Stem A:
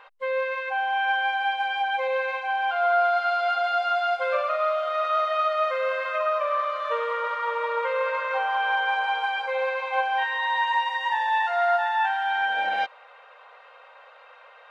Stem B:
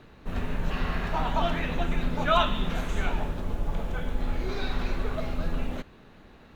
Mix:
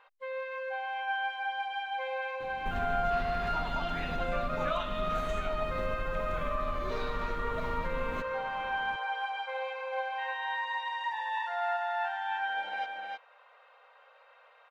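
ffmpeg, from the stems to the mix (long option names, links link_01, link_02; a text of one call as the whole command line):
ffmpeg -i stem1.wav -i stem2.wav -filter_complex "[0:a]volume=-11dB,asplit=2[link_01][link_02];[link_02]volume=-3.5dB[link_03];[1:a]acompressor=threshold=-32dB:ratio=5,adelay=2400,volume=0dB[link_04];[link_03]aecho=0:1:311:1[link_05];[link_01][link_04][link_05]amix=inputs=3:normalize=0" out.wav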